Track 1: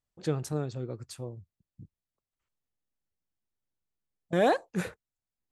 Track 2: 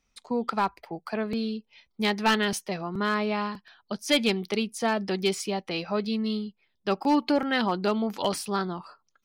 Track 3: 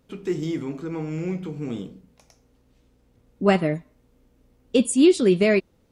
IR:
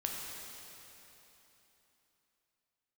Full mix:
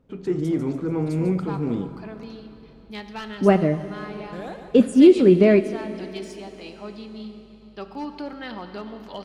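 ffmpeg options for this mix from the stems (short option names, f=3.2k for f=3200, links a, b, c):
-filter_complex "[0:a]acompressor=threshold=-34dB:ratio=2,volume=-9.5dB,asplit=3[a][b][c];[b]volume=-12dB[d];[c]volume=-7dB[e];[1:a]highshelf=f=9.5k:g=-8,aeval=exprs='val(0)+0.00447*(sin(2*PI*50*n/s)+sin(2*PI*2*50*n/s)/2+sin(2*PI*3*50*n/s)/3+sin(2*PI*4*50*n/s)/4+sin(2*PI*5*50*n/s)/5)':c=same,adelay=900,volume=-18dB,asplit=2[f][g];[g]volume=-3.5dB[h];[2:a]lowpass=f=1k:p=1,volume=-0.5dB,asplit=2[i][j];[j]volume=-11.5dB[k];[3:a]atrim=start_sample=2205[l];[d][h][k]amix=inputs=3:normalize=0[m];[m][l]afir=irnorm=-1:irlink=0[n];[e]aecho=0:1:145|290|435|580|725|870|1015:1|0.51|0.26|0.133|0.0677|0.0345|0.0176[o];[a][f][i][n][o]amix=inputs=5:normalize=0,dynaudnorm=f=320:g=3:m=4dB"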